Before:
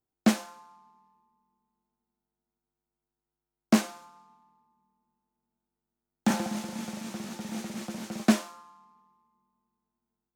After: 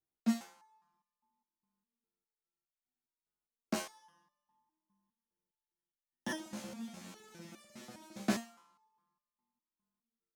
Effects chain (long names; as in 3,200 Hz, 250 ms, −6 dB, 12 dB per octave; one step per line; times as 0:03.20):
0:03.91–0:06.38: EQ curve with evenly spaced ripples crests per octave 1.2, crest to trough 14 dB
step-sequenced resonator 4.9 Hz 66–590 Hz